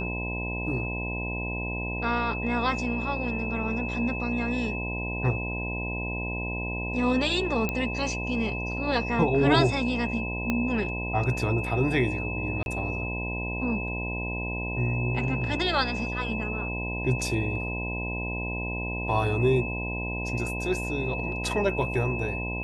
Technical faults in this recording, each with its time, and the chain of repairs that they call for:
buzz 60 Hz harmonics 17 -33 dBFS
whine 2.6 kHz -33 dBFS
7.69 s: pop -14 dBFS
10.50 s: pop -13 dBFS
12.63–12.66 s: dropout 31 ms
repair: de-click; de-hum 60 Hz, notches 17; band-stop 2.6 kHz, Q 30; interpolate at 12.63 s, 31 ms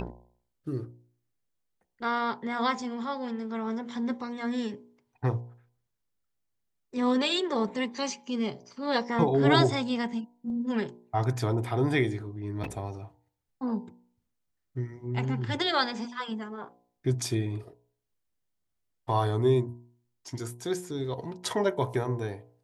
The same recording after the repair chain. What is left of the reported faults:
10.50 s: pop

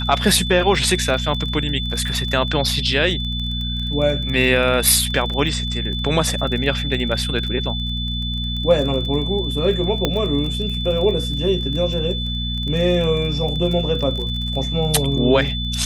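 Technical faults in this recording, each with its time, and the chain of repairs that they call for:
crackle 22 per s -26 dBFS
hum 60 Hz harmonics 4 -25 dBFS
whine 3.5 kHz -26 dBFS
10.05 s: pop -4 dBFS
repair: de-click; band-stop 3.5 kHz, Q 30; de-hum 60 Hz, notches 4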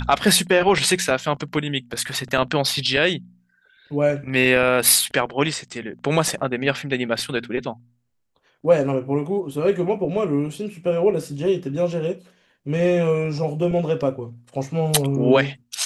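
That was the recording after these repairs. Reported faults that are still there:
nothing left

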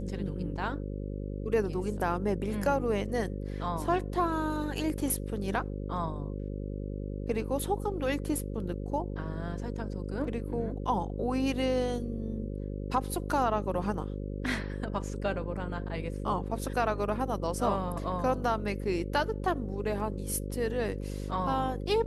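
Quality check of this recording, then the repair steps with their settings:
buzz 50 Hz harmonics 11 -36 dBFS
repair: de-hum 50 Hz, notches 11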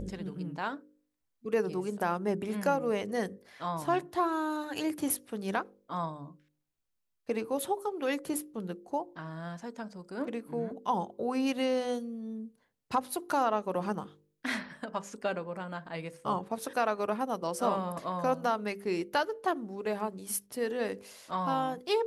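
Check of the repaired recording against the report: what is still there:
nothing left

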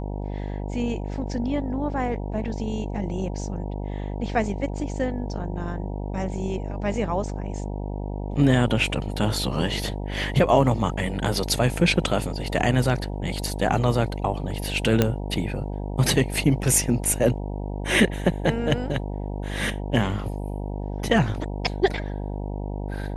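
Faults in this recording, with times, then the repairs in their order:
buzz 50 Hz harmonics 19 -30 dBFS
15.02 s: pop -5 dBFS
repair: de-click; de-hum 50 Hz, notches 19

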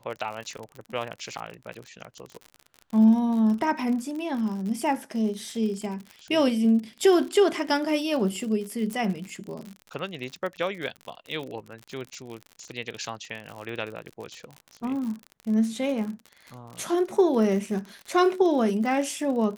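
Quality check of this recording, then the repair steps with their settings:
crackle 59 per s -33 dBFS
8.93 s: pop -19 dBFS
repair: de-click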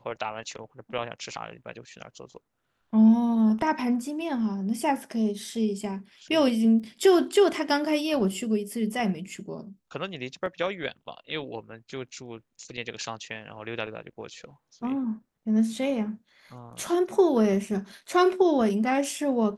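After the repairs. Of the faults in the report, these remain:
nothing left

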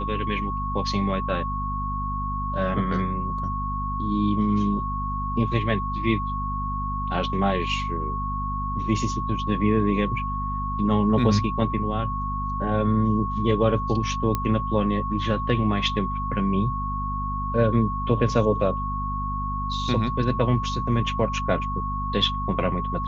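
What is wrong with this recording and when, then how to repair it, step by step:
hum 50 Hz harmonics 5 -30 dBFS
whine 1.1 kHz -28 dBFS
14.35 s: pop -11 dBFS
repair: de-click; de-hum 50 Hz, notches 5; band-stop 1.1 kHz, Q 30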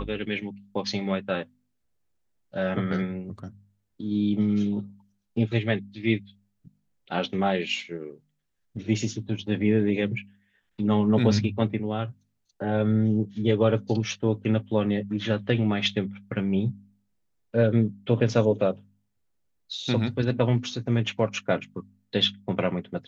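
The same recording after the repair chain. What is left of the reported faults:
nothing left

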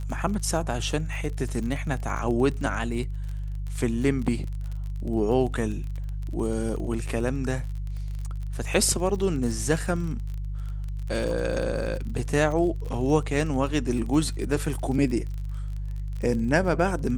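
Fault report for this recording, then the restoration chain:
crackle 38 per s -32 dBFS
hum 50 Hz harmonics 3 -31 dBFS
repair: de-click; de-hum 50 Hz, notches 3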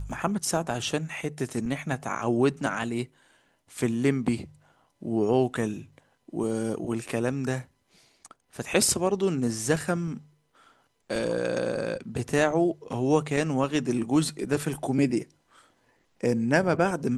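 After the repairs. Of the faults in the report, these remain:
nothing left

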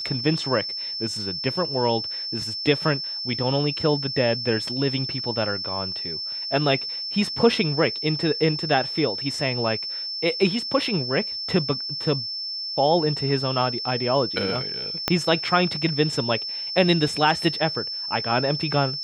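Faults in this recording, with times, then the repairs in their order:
whine 5.3 kHz -28 dBFS
15.08 s: pop -5 dBFS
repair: de-click; band-stop 5.3 kHz, Q 30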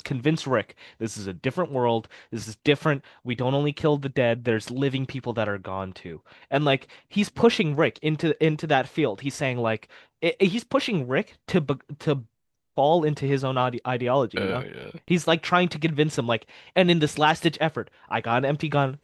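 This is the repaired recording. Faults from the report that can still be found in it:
15.08 s: pop

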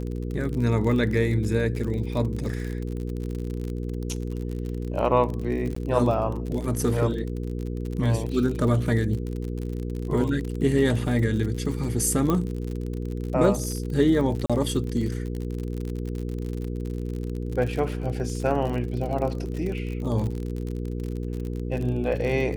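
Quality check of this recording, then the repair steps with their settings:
crackle 52 per s -30 dBFS
hum 60 Hz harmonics 8 -30 dBFS
5.75–5.76 s: dropout 14 ms
12.30 s: pop -12 dBFS
14.46–14.50 s: dropout 36 ms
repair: de-click; de-hum 60 Hz, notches 8; interpolate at 5.75 s, 14 ms; interpolate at 14.46 s, 36 ms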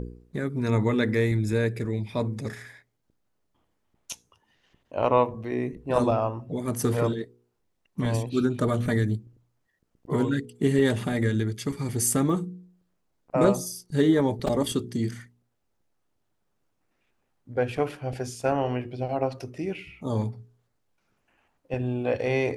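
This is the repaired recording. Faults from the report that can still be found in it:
12.30 s: pop

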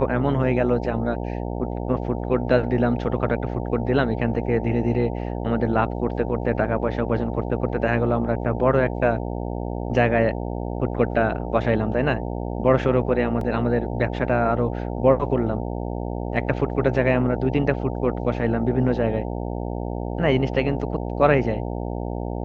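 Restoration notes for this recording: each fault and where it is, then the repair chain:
buzz 60 Hz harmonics 15 -28 dBFS
13.41 s: dropout 2.9 ms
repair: de-hum 60 Hz, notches 15; interpolate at 13.41 s, 2.9 ms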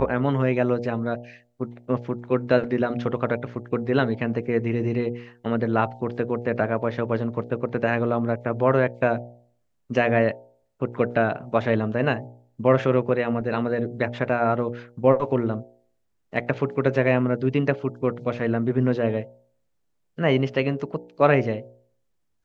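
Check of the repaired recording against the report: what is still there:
nothing left

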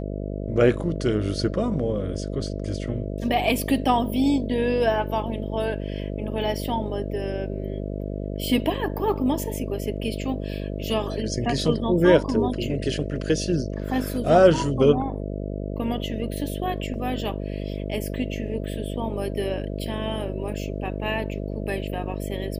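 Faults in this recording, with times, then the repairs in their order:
buzz 50 Hz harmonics 13 -30 dBFS
16.94 s: dropout 3.2 ms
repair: de-hum 50 Hz, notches 13; interpolate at 16.94 s, 3.2 ms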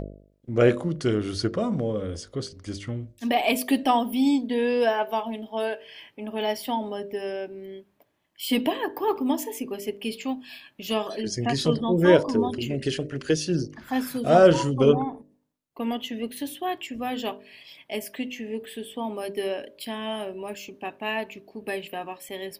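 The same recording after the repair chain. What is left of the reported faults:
nothing left

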